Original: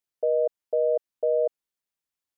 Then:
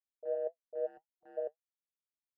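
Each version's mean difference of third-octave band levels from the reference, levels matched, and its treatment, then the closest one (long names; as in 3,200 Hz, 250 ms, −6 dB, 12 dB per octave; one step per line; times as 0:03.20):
5.0 dB: noise gate −20 dBFS, range −23 dB
flanger 1.9 Hz, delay 5.8 ms, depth 2.9 ms, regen +64%
gain on a spectral selection 0:00.86–0:01.38, 350–730 Hz −25 dB
level +4.5 dB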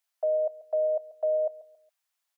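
2.5 dB: elliptic high-pass filter 620 Hz, stop band 40 dB
brickwall limiter −29 dBFS, peak gain reduction 6.5 dB
repeating echo 138 ms, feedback 32%, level −18 dB
level +8 dB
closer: second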